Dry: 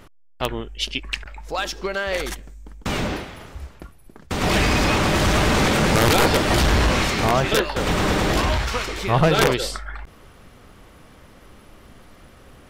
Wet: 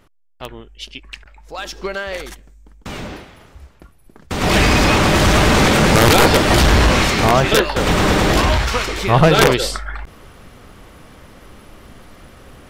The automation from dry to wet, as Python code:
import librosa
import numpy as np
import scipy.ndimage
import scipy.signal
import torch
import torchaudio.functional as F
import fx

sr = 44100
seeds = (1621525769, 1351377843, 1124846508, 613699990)

y = fx.gain(x, sr, db=fx.line((1.4, -7.0), (1.87, 2.0), (2.32, -5.0), (3.74, -5.0), (4.59, 5.5)))